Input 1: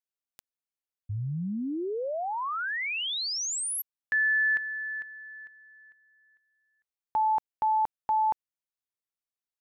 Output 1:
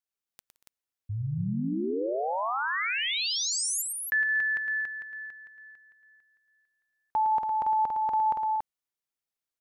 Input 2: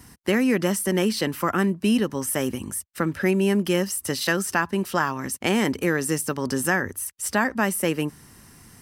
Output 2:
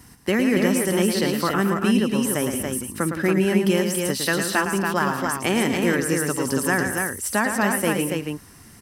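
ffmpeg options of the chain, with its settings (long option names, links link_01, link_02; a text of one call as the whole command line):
ffmpeg -i in.wav -af "aecho=1:1:110|169|235|282:0.447|0.133|0.168|0.631" out.wav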